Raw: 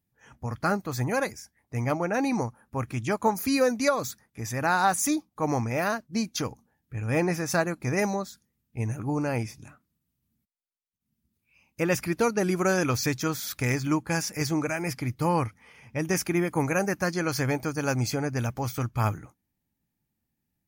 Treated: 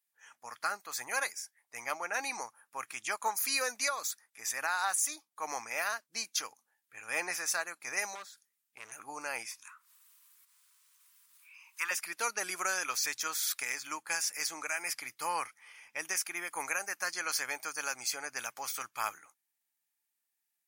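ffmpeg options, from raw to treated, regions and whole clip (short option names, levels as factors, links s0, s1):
-filter_complex "[0:a]asettb=1/sr,asplit=3[s0][s1][s2];[s0]atrim=end=8.154[s3];[s1]atrim=start=8.15:end=8.92,asetpts=PTS-STARTPTS,afade=t=in:d=0.004:c=qsin,afade=t=out:st=0.766:d=0.004:c=qsin,acrossover=split=3300[s4][s5];[s5]acompressor=threshold=0.00224:ratio=4:attack=1:release=60[s6];[s4][s6]amix=inputs=2:normalize=0,volume=37.6,asoftclip=hard,volume=0.0266[s7];[s2]atrim=start=8.916[s8];[s3][s7]acrossfade=d=0.004:c1=hsin:c2=qsin[s9];[s9][s8]acrossfade=d=0.004:c1=qsin:c2=hsin,asettb=1/sr,asplit=3[s10][s11][s12];[s10]atrim=end=9.514[s13];[s11]atrim=start=9.51:end=11.91,asetpts=PTS-STARTPTS,afade=t=in:d=0.004:c=qsin,afade=t=out:st=2.396:d=0.004:c=qsin,asuperstop=centerf=700:order=8:qfactor=2,lowshelf=f=700:t=q:w=3:g=-11,acompressor=mode=upward:threshold=0.00501:ratio=2.5:attack=3.2:release=140:knee=2.83:detection=peak[s14];[s12]atrim=start=11.906[s15];[s13][s14]acrossfade=d=0.004:c1=hsin:c2=qsin[s16];[s16][s15]acrossfade=d=0.004:c1=qsin:c2=hsin,highpass=1200,equalizer=f=9000:w=1.3:g=6,alimiter=limit=0.106:level=0:latency=1:release=461"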